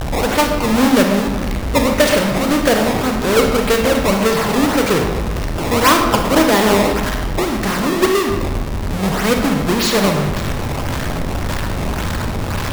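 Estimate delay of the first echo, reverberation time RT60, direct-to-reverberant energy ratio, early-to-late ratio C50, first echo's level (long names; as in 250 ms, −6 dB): no echo audible, 1.5 s, 3.0 dB, 4.5 dB, no echo audible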